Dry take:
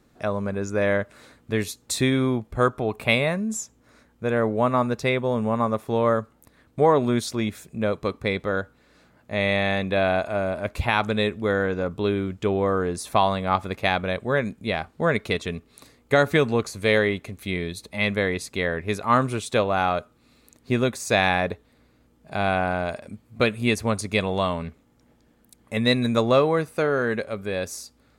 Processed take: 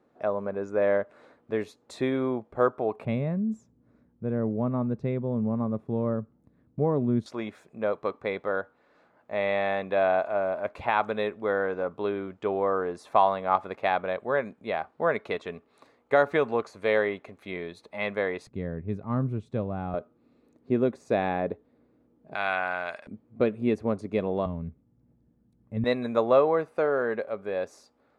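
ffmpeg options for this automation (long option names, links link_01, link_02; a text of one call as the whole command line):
ffmpeg -i in.wav -af "asetnsamples=nb_out_samples=441:pad=0,asendcmd='3.05 bandpass f 170;7.26 bandpass f 790;18.47 bandpass f 140;19.94 bandpass f 350;22.35 bandpass f 1700;23.07 bandpass f 350;24.46 bandpass f 120;25.84 bandpass f 690',bandpass=frequency=610:width_type=q:width=0.93:csg=0" out.wav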